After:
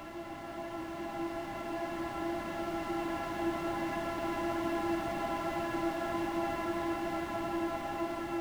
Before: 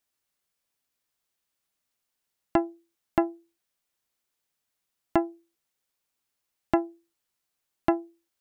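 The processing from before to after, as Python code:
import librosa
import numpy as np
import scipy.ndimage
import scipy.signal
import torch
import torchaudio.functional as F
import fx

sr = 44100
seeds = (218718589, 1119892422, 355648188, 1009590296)

y = fx.spec_flatten(x, sr, power=0.67)
y = fx.paulstretch(y, sr, seeds[0], factor=17.0, window_s=1.0, from_s=4.86)
y = F.gain(torch.from_numpy(y), -5.5).numpy()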